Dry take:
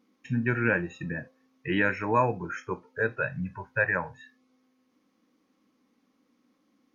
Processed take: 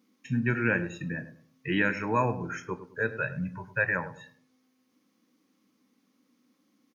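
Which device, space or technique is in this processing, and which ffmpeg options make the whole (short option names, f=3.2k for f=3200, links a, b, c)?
smiley-face EQ: -filter_complex "[0:a]highpass=140,lowshelf=f=130:g=8,equalizer=f=670:t=o:w=2.3:g=-4,highshelf=f=5.5k:g=7.5,asplit=2[a][b];[b]adelay=104,lowpass=f=950:p=1,volume=-11dB,asplit=2[c][d];[d]adelay=104,lowpass=f=950:p=1,volume=0.34,asplit=2[e][f];[f]adelay=104,lowpass=f=950:p=1,volume=0.34,asplit=2[g][h];[h]adelay=104,lowpass=f=950:p=1,volume=0.34[i];[a][c][e][g][i]amix=inputs=5:normalize=0"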